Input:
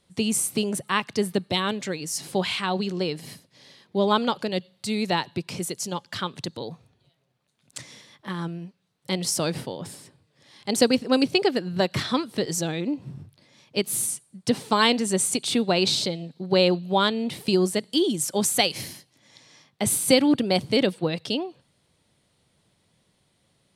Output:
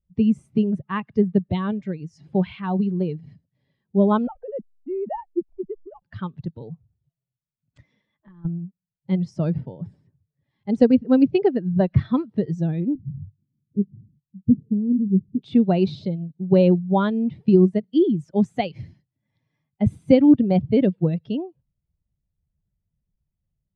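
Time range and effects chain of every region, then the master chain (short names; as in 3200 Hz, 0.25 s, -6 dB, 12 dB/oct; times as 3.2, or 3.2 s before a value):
4.27–6.02 sine-wave speech + band-pass 280 Hz, Q 0.67 + backlash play -44 dBFS
7.8–8.45 bell 120 Hz -9 dB 1.1 oct + compressor 12:1, threshold -38 dBFS
12.95–15.43 inverse Chebyshev low-pass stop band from 2100 Hz, stop band 80 dB + doubler 20 ms -14 dB
whole clip: per-bin expansion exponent 1.5; LPF 2900 Hz 12 dB/oct; tilt -4.5 dB/oct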